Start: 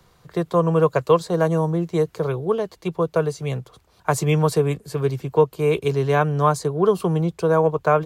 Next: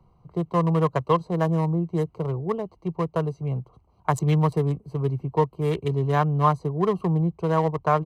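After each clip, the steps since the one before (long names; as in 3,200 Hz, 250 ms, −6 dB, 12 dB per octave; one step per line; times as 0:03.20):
adaptive Wiener filter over 25 samples
comb filter 1 ms, depth 41%
level −2.5 dB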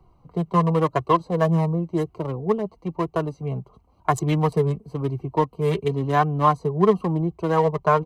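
flanger 0.96 Hz, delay 2.5 ms, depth 2.7 ms, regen +29%
level +6.5 dB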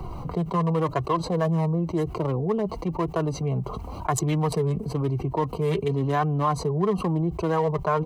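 envelope flattener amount 70%
level −8 dB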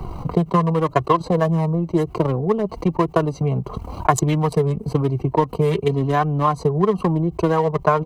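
transient designer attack +7 dB, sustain −9 dB
level +4 dB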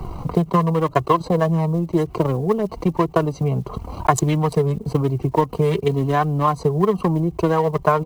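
one scale factor per block 7 bits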